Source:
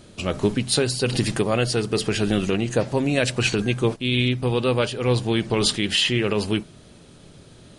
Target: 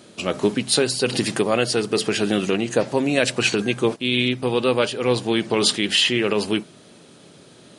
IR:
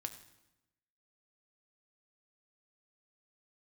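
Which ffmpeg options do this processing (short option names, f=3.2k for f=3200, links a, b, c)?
-af "highpass=200,volume=2.5dB"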